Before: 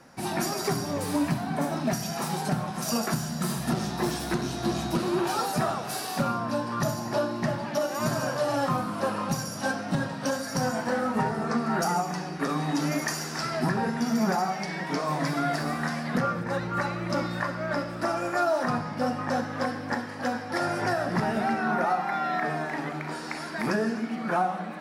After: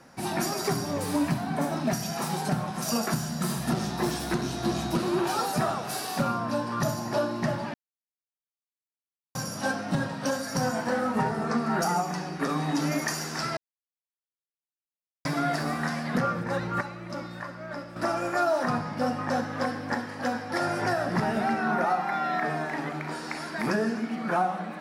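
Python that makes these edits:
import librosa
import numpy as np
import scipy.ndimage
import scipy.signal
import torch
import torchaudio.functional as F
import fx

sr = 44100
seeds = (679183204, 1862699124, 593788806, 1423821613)

y = fx.edit(x, sr, fx.silence(start_s=7.74, length_s=1.61),
    fx.silence(start_s=13.57, length_s=1.68),
    fx.clip_gain(start_s=16.81, length_s=1.15, db=-8.0), tone=tone)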